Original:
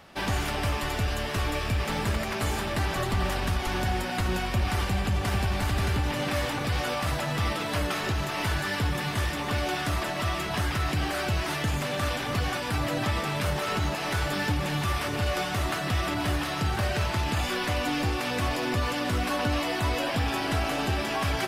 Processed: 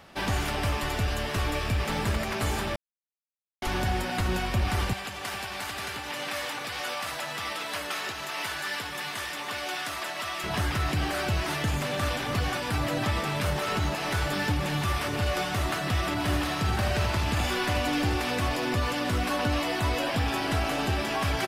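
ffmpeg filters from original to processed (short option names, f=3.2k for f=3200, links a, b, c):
-filter_complex "[0:a]asettb=1/sr,asplit=3[a][b][c];[a]atrim=end=4.934[d];[b]atrim=start=4.93:end=10.44,asetpts=PTS-STARTPTS,afade=t=in:d=0.004:c=qsin,afade=t=out:st=5.506:d=0.004:c=qsin,highpass=f=1k:p=1[e];[c]atrim=start=10.436[f];[d][e]acrossfade=d=0.004:c1=hsin:c2=qsin[g];[g][f]acrossfade=d=0.004:c1=qsin:c2=hsin,asplit=3[h][i][j];[h]afade=t=out:st=16.28:d=0.02[k];[i]aecho=1:1:78:0.422,afade=t=in:st=16.28:d=0.02,afade=t=out:st=18.34:d=0.02[l];[j]afade=t=in:st=18.34:d=0.02[m];[k][l][m]amix=inputs=3:normalize=0,asplit=3[n][o][p];[n]atrim=end=2.76,asetpts=PTS-STARTPTS,afade=t=out:st=2.756:d=0.004:c=hsin[q];[o]atrim=start=2.76:end=3.62,asetpts=PTS-STARTPTS,volume=0[r];[p]atrim=start=3.62,asetpts=PTS-STARTPTS,afade=t=in:d=0.004:c=hsin[s];[q][r][s]concat=n=3:v=0:a=1"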